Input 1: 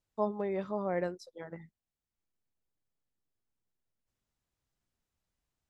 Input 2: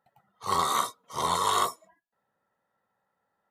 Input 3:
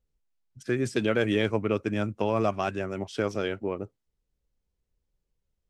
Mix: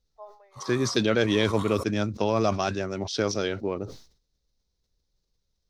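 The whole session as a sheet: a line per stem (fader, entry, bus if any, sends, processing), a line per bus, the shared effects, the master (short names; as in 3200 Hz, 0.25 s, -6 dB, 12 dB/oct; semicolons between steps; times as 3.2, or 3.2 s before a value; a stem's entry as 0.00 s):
-11.5 dB, 0.00 s, no send, steep high-pass 540 Hz; auto duck -7 dB, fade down 0.35 s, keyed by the third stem
-15.5 dB, 0.10 s, no send, HPF 420 Hz
+1.5 dB, 0.00 s, no send, band shelf 4800 Hz +14 dB 1 oct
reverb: off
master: high shelf 5400 Hz -5.5 dB; sustainer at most 110 dB/s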